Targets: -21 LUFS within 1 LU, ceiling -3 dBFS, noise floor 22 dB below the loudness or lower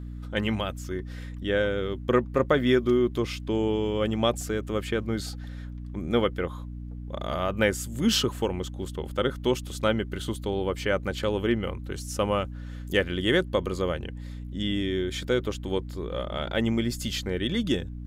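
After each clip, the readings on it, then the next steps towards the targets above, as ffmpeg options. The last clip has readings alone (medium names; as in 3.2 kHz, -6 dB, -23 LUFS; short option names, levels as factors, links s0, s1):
hum 60 Hz; highest harmonic 300 Hz; hum level -35 dBFS; loudness -28.0 LUFS; peak level -8.0 dBFS; loudness target -21.0 LUFS
-> -af "bandreject=f=60:t=h:w=6,bandreject=f=120:t=h:w=6,bandreject=f=180:t=h:w=6,bandreject=f=240:t=h:w=6,bandreject=f=300:t=h:w=6"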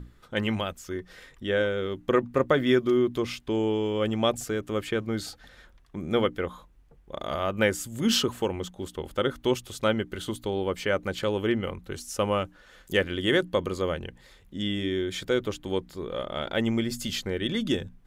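hum not found; loudness -28.0 LUFS; peak level -9.0 dBFS; loudness target -21.0 LUFS
-> -af "volume=2.24,alimiter=limit=0.708:level=0:latency=1"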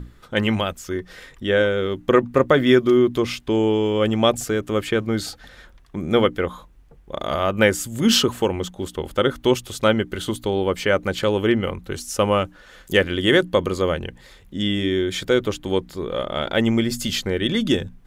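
loudness -21.0 LUFS; peak level -3.0 dBFS; noise floor -49 dBFS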